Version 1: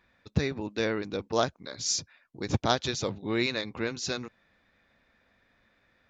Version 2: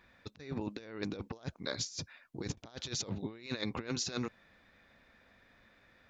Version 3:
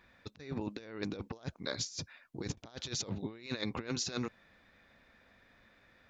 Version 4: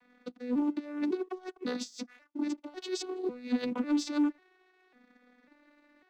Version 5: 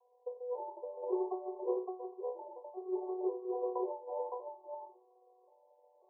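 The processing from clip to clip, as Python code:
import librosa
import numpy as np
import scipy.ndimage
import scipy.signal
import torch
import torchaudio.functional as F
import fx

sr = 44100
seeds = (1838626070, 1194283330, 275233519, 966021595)

y1 = fx.over_compress(x, sr, threshold_db=-36.0, ratio=-0.5)
y1 = y1 * 10.0 ** (-3.0 / 20.0)
y2 = y1
y3 = fx.vocoder_arp(y2, sr, chord='minor triad', root=59, every_ms=547)
y3 = fx.leveller(y3, sr, passes=1)
y3 = y3 * 10.0 ** (5.5 / 20.0)
y4 = fx.spec_trails(y3, sr, decay_s=0.34)
y4 = fx.brickwall_bandpass(y4, sr, low_hz=360.0, high_hz=1100.0)
y4 = y4 + 10.0 ** (-3.0 / 20.0) * np.pad(y4, (int(564 * sr / 1000.0), 0))[:len(y4)]
y4 = y4 * 10.0 ** (1.5 / 20.0)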